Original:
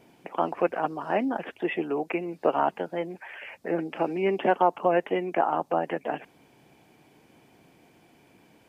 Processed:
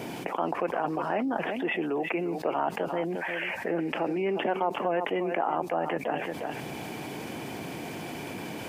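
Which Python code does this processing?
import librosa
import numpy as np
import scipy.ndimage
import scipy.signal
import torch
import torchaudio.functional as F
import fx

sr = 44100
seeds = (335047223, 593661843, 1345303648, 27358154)

y = scipy.signal.sosfilt(scipy.signal.butter(2, 75.0, 'highpass', fs=sr, output='sos'), x)
y = y + 10.0 ** (-14.5 / 20.0) * np.pad(y, (int(354 * sr / 1000.0), 0))[:len(y)]
y = fx.env_flatten(y, sr, amount_pct=70)
y = y * 10.0 ** (-7.5 / 20.0)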